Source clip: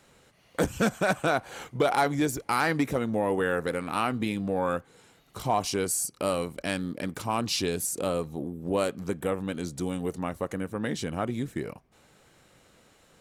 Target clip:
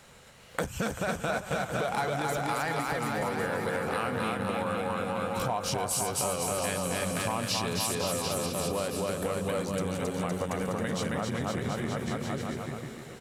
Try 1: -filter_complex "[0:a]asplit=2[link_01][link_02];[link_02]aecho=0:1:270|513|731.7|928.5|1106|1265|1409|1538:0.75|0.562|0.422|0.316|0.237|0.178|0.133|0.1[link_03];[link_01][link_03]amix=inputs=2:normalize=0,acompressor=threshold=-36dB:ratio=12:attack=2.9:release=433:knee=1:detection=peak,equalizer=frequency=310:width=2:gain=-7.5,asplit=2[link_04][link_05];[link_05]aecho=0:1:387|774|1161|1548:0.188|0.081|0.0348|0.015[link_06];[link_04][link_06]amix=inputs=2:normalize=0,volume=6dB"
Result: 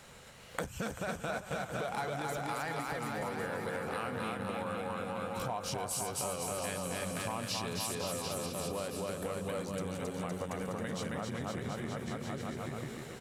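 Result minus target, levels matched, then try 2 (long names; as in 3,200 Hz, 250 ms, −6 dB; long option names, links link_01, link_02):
downward compressor: peak gain reduction +6.5 dB
-filter_complex "[0:a]asplit=2[link_01][link_02];[link_02]aecho=0:1:270|513|731.7|928.5|1106|1265|1409|1538:0.75|0.562|0.422|0.316|0.237|0.178|0.133|0.1[link_03];[link_01][link_03]amix=inputs=2:normalize=0,acompressor=threshold=-29dB:ratio=12:attack=2.9:release=433:knee=1:detection=peak,equalizer=frequency=310:width=2:gain=-7.5,asplit=2[link_04][link_05];[link_05]aecho=0:1:387|774|1161|1548:0.188|0.081|0.0348|0.015[link_06];[link_04][link_06]amix=inputs=2:normalize=0,volume=6dB"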